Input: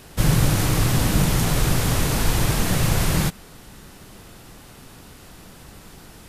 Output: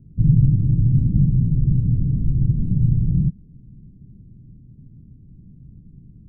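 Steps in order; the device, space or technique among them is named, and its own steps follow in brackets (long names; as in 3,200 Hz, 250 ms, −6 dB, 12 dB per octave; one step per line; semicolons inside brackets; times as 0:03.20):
the neighbour's flat through the wall (low-pass filter 240 Hz 24 dB per octave; parametric band 130 Hz +7 dB 0.7 octaves)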